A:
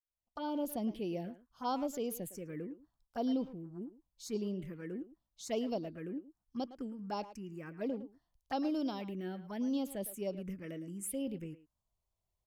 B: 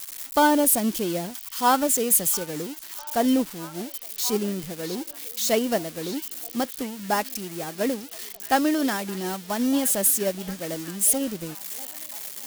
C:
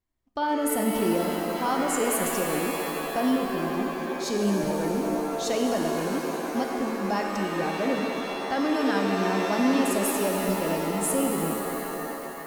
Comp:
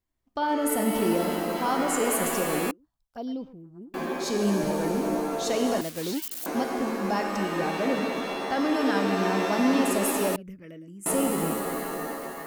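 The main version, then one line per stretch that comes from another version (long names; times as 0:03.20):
C
0:02.71–0:03.94: punch in from A
0:05.81–0:06.46: punch in from B
0:10.36–0:11.06: punch in from A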